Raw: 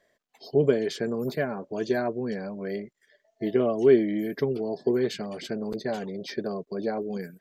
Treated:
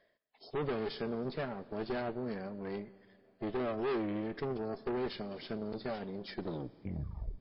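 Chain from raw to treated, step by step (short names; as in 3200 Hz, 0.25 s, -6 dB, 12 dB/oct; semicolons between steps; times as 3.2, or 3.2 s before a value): tape stop at the end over 1.10 s; reverse; upward compressor, threshold -41 dBFS; reverse; tube stage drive 28 dB, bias 0.8; Schroeder reverb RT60 2.9 s, combs from 28 ms, DRR 18 dB; gain -3 dB; MP3 24 kbps 12000 Hz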